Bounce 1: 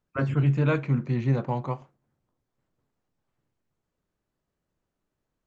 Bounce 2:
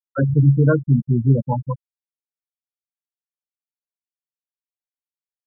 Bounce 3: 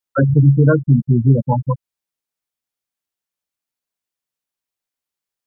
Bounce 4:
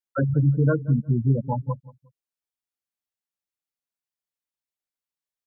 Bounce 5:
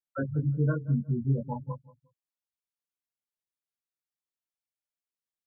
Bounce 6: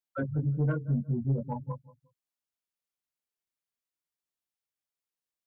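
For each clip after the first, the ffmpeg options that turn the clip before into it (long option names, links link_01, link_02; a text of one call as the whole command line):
ffmpeg -i in.wav -af "afftfilt=real='re*gte(hypot(re,im),0.178)':imag='im*gte(hypot(re,im),0.178)':win_size=1024:overlap=0.75,volume=8.5dB" out.wav
ffmpeg -i in.wav -af "acompressor=threshold=-28dB:ratio=1.5,volume=9dB" out.wav
ffmpeg -i in.wav -filter_complex "[0:a]asplit=2[link_01][link_02];[link_02]adelay=179,lowpass=frequency=1300:poles=1,volume=-19dB,asplit=2[link_03][link_04];[link_04]adelay=179,lowpass=frequency=1300:poles=1,volume=0.29[link_05];[link_01][link_03][link_05]amix=inputs=3:normalize=0,volume=-8.5dB" out.wav
ffmpeg -i in.wav -af "flanger=delay=18.5:depth=2.6:speed=0.4,volume=-4dB" out.wav
ffmpeg -i in.wav -af "asoftclip=type=tanh:threshold=-19.5dB" out.wav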